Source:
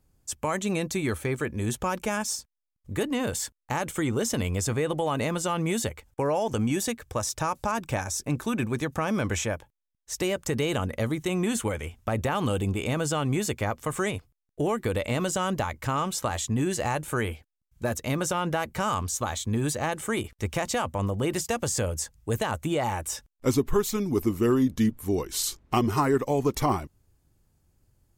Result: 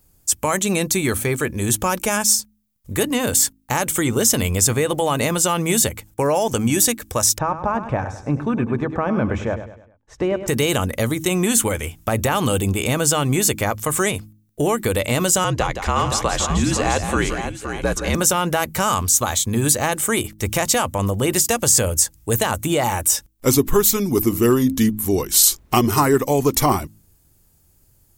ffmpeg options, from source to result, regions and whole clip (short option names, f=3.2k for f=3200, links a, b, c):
-filter_complex "[0:a]asettb=1/sr,asplit=3[a][b][c];[a]atrim=end=7.384[d];[b]atrim=start=7.38:end=10.48,asetpts=PTS-STARTPTS,afade=t=in:d=0.004:c=qsin,afade=t=out:st=3.096:d=0.004:c=qsin,lowpass=1.3k,aecho=1:1:102|204|306|408:0.282|0.118|0.0497|0.0209,atrim=end_sample=136710[e];[c]atrim=start=10.476[f];[d][e]acrossfade=d=0.004:c1=hsin:c2=qsin[g];[g][f]acrossfade=d=0.004:c1=qsin:c2=hsin,asettb=1/sr,asplit=3[h][i][j];[h]atrim=end=15.444[k];[i]atrim=start=15.44:end=18.15,asetpts=PTS-STARTPTS,afade=t=in:d=0.004:c=qsin,afade=t=out:st=2.706:d=0.004:c=qsin,lowpass=5.5k,afreqshift=-55,aecho=1:1:169|518|837:0.376|0.398|0.188,atrim=end_sample=119511[l];[j]atrim=start=18.146[m];[k][l]acrossfade=d=0.004:c1=hsin:c2=qsin[n];[n][m]acrossfade=d=0.004:c1=qsin:c2=hsin,aemphasis=mode=production:type=50kf,bandreject=f=52.99:t=h:w=4,bandreject=f=105.98:t=h:w=4,bandreject=f=158.97:t=h:w=4,bandreject=f=211.96:t=h:w=4,bandreject=f=264.95:t=h:w=4,bandreject=f=317.94:t=h:w=4,volume=7dB"